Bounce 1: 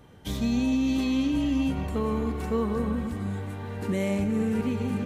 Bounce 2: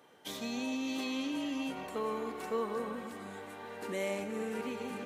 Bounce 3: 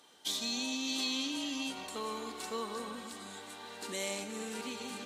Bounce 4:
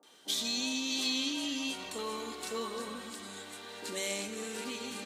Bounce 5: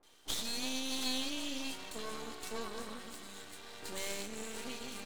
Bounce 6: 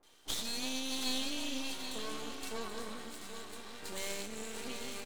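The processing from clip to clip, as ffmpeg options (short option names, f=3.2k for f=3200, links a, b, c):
-af "highpass=420,volume=-3dB"
-af "equalizer=f=125:t=o:w=1:g=-10,equalizer=f=500:t=o:w=1:g=-6,equalizer=f=2k:t=o:w=1:g=-4,equalizer=f=4k:t=o:w=1:g=10,equalizer=f=8k:t=o:w=1:g=9"
-filter_complex "[0:a]acrossover=split=160|860[a][b][c];[c]adelay=30[d];[a]adelay=70[e];[e][b][d]amix=inputs=3:normalize=0,volume=2.5dB"
-af "aeval=exprs='max(val(0),0)':c=same"
-af "aecho=1:1:782:0.376"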